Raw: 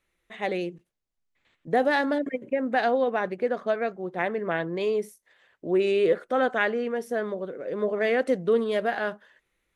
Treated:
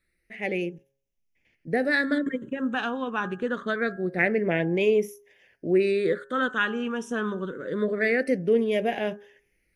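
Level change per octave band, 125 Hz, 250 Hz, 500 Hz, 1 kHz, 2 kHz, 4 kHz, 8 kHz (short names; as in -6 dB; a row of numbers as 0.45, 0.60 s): +5.5 dB, +3.0 dB, -1.0 dB, -4.0 dB, +2.5 dB, +1.5 dB, n/a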